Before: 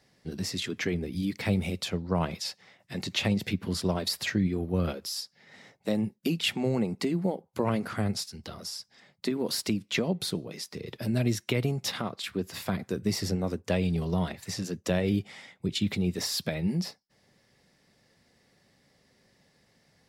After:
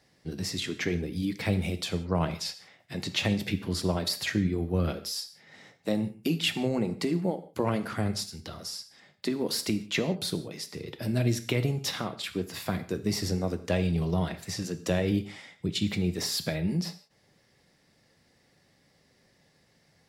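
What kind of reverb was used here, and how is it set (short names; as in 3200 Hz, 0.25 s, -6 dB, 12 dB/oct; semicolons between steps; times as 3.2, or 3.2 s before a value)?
non-linear reverb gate 0.2 s falling, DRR 10 dB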